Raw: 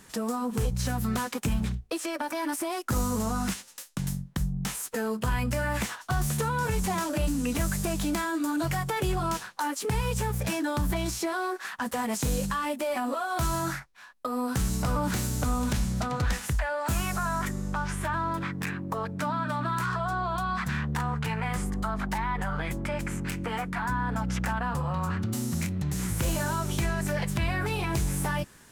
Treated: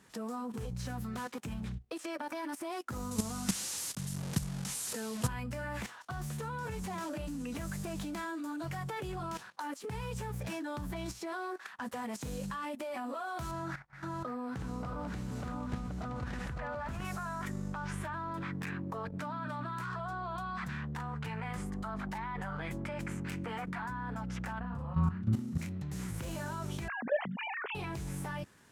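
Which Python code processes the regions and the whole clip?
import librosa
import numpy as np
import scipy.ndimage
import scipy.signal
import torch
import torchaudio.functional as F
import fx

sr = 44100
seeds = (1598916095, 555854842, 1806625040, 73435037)

y = fx.chain(x, sr, fx.delta_mod(bps=64000, step_db=-30.5),
    fx.highpass(hz=44.0, slope=12),
    fx.bass_treble(bass_db=5, treble_db=13), at=(3.11, 5.28))
y = fx.chain(y, sr, fx.reverse_delay(ms=360, wet_db=-3.0),
    fx.lowpass(hz=2600.0, slope=6),
    fx.echo_single(ms=555, db=-11.5), at=(13.51, 17.05))
y = fx.chain(y, sr, fx.bass_treble(bass_db=11, treble_db=-8),
    fx.level_steps(step_db=13),
    fx.doubler(ms=37.0, db=-3.5), at=(24.6, 25.58))
y = fx.chain(y, sr, fx.sine_speech(),
    fx.quant_dither(seeds[0], bits=12, dither='none'), at=(26.88, 27.75))
y = scipy.signal.sosfilt(scipy.signal.butter(2, 66.0, 'highpass', fs=sr, output='sos'), y)
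y = fx.high_shelf(y, sr, hz=6000.0, db=-8.0)
y = fx.level_steps(y, sr, step_db=12)
y = F.gain(torch.from_numpy(y), -2.5).numpy()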